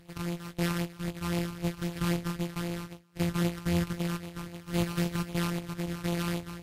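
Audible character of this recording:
a buzz of ramps at a fixed pitch in blocks of 256 samples
phaser sweep stages 12, 3.8 Hz, lowest notch 590–1,500 Hz
aliases and images of a low sample rate 6,900 Hz, jitter 20%
Ogg Vorbis

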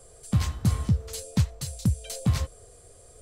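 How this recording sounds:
background noise floor −52 dBFS
spectral slope −6.0 dB per octave

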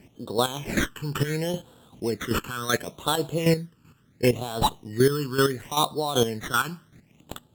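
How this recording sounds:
chopped level 2.6 Hz, depth 65%, duty 20%
aliases and images of a low sample rate 4,800 Hz, jitter 0%
phaser sweep stages 12, 0.71 Hz, lowest notch 640–2,100 Hz
Opus

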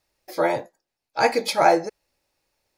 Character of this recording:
background noise floor −84 dBFS
spectral slope −3.5 dB per octave

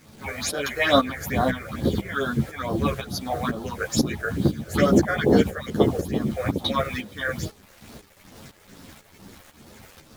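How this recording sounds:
phaser sweep stages 6, 2.3 Hz, lowest notch 230–2,400 Hz
a quantiser's noise floor 8 bits, dither none
tremolo saw up 2 Hz, depth 70%
a shimmering, thickened sound

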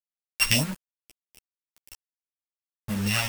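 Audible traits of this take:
a buzz of ramps at a fixed pitch in blocks of 16 samples
phaser sweep stages 2, 1.8 Hz, lowest notch 310–4,600 Hz
a quantiser's noise floor 6 bits, dither none
a shimmering, thickened sound

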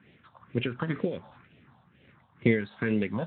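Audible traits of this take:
a quantiser's noise floor 10 bits, dither none
tremolo triangle 2.5 Hz, depth 65%
phaser sweep stages 4, 2.1 Hz, lowest notch 370–1,100 Hz
Speex

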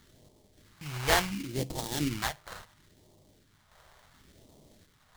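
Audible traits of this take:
sample-and-hold tremolo
aliases and images of a low sample rate 2,600 Hz, jitter 20%
phaser sweep stages 2, 0.71 Hz, lowest notch 250–1,500 Hz

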